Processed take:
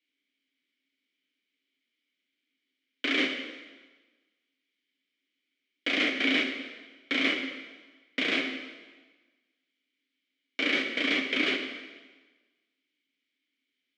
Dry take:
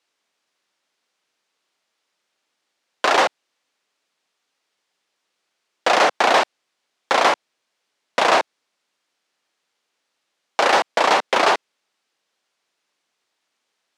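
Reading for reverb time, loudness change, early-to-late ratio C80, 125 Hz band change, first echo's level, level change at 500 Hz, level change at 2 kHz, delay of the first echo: 1.3 s, -9.5 dB, 7.5 dB, n/a, none, -16.0 dB, -6.0 dB, none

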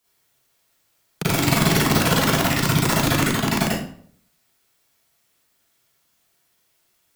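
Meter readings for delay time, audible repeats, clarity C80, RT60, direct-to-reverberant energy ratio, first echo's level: none, none, 5.5 dB, 0.55 s, -7.5 dB, none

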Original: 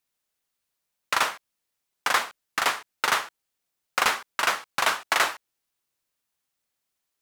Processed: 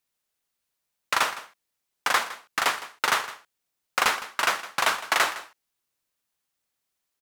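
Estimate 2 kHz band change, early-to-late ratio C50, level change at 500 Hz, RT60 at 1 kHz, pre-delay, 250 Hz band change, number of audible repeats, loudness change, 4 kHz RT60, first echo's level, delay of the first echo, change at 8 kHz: 0.0 dB, none, 0.0 dB, none, none, 0.0 dB, 1, 0.0 dB, none, -16.0 dB, 0.161 s, 0.0 dB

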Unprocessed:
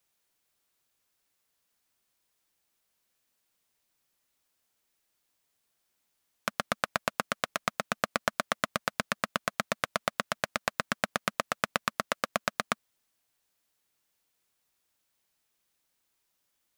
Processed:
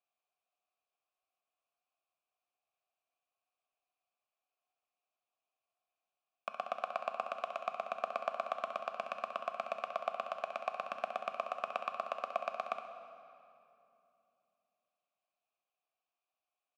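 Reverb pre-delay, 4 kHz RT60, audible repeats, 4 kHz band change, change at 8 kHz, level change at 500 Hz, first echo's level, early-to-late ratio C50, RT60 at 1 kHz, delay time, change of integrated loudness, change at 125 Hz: 8 ms, 2.0 s, 1, -16.0 dB, under -25 dB, -3.5 dB, -9.0 dB, 5.5 dB, 2.6 s, 66 ms, -7.0 dB, under -20 dB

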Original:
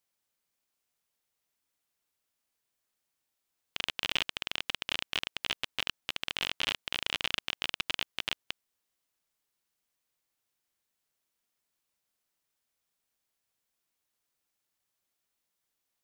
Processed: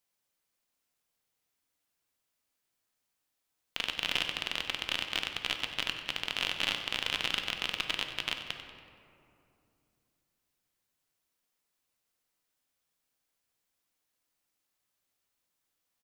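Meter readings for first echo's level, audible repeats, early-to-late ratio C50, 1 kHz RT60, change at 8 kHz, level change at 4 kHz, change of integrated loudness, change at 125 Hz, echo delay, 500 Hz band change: -12.5 dB, 1, 6.0 dB, 2.5 s, +0.5 dB, +1.0 dB, +1.0 dB, +1.5 dB, 94 ms, +1.5 dB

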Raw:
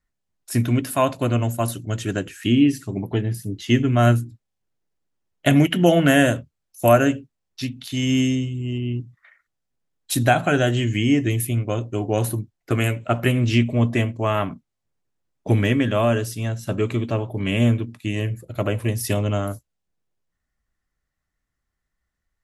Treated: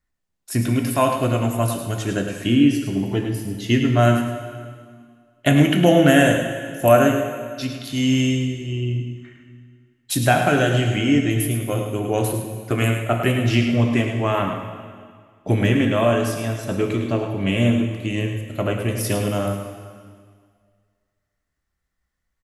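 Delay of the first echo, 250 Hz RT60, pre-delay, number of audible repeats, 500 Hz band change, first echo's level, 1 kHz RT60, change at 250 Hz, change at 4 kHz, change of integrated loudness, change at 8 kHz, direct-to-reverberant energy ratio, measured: 0.106 s, 2.0 s, 5 ms, 1, +2.0 dB, -8.0 dB, 1.9 s, +1.5 dB, +1.5 dB, +1.0 dB, +1.5 dB, 2.5 dB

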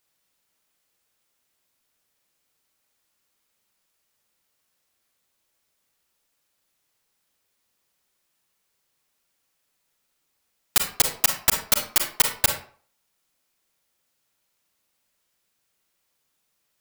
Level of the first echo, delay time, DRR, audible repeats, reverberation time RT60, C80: none, none, 4.0 dB, none, 0.45 s, 11.5 dB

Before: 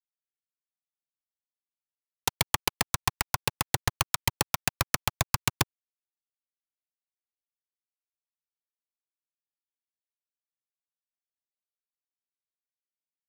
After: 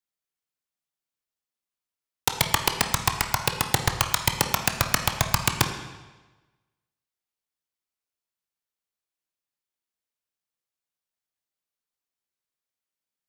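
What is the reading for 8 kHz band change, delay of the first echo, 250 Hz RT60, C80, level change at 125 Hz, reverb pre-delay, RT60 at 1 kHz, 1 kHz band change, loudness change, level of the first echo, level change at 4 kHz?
+4.5 dB, none, 1.2 s, 9.0 dB, +4.5 dB, 18 ms, 1.2 s, +5.5 dB, +5.0 dB, none, +5.0 dB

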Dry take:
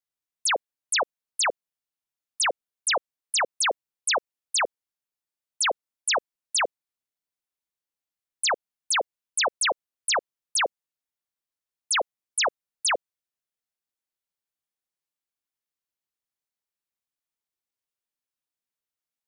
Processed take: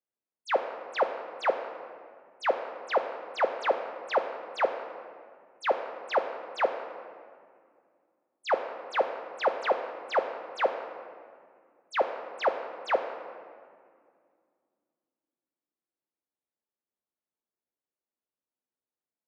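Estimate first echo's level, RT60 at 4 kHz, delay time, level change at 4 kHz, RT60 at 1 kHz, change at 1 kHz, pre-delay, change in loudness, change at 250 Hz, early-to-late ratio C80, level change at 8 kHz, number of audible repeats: none, 1.2 s, none, -15.5 dB, 2.0 s, -0.5 dB, 3 ms, -5.0 dB, +5.0 dB, 9.0 dB, under -30 dB, none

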